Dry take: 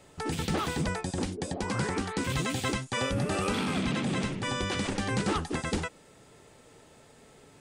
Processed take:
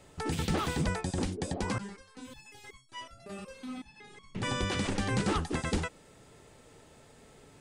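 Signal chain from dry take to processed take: bass shelf 77 Hz +7 dB; 1.78–4.35 s: resonator arpeggio 5.4 Hz 200–1100 Hz; trim -1.5 dB

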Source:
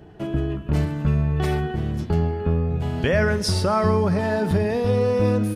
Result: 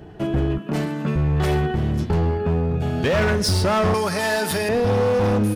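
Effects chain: 0.58–1.16 s: Chebyshev high-pass 190 Hz, order 3; 2.38–3.15 s: comb of notches 1 kHz; 3.94–4.69 s: tilt EQ +4.5 dB/octave; hard clipper -20.5 dBFS, distortion -10 dB; trim +4.5 dB

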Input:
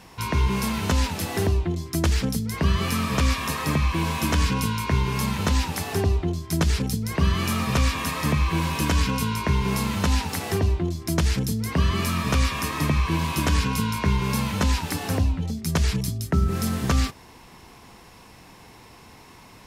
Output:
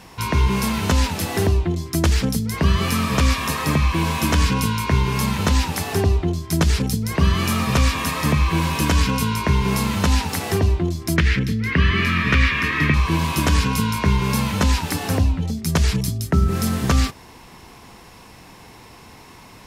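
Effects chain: 11.16–12.94 s: FFT filter 400 Hz 0 dB, 760 Hz -11 dB, 1.9 kHz +11 dB, 8.5 kHz -15 dB; trim +4 dB

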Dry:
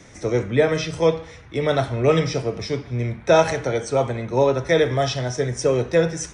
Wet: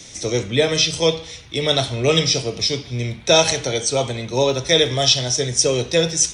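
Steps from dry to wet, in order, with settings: resonant high shelf 2.4 kHz +12.5 dB, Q 1.5

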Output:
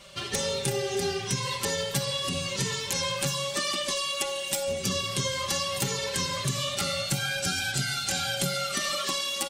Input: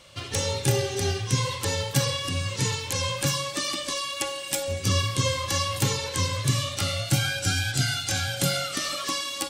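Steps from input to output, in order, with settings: comb 5.1 ms, depth 85%; compression, threshold -25 dBFS, peak gain reduction 9 dB

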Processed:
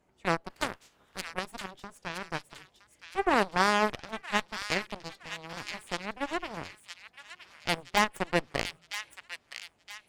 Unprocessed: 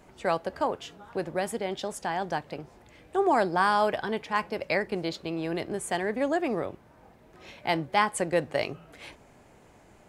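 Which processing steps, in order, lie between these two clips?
0.49–1.31 s: spectral peaks clipped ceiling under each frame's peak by 23 dB; Chebyshev shaper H 3 -34 dB, 6 -24 dB, 7 -16 dB, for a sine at -8.5 dBFS; feedback echo behind a high-pass 967 ms, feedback 39%, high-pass 2 kHz, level -6.5 dB

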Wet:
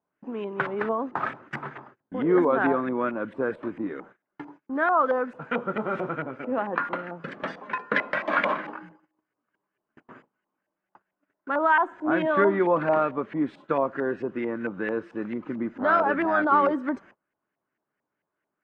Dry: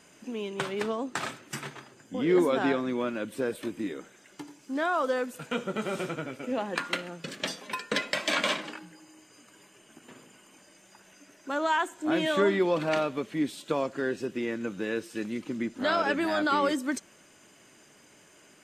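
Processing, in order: LFO low-pass saw up 4.5 Hz 830–1900 Hz; gate -49 dBFS, range -28 dB; trim +1.5 dB

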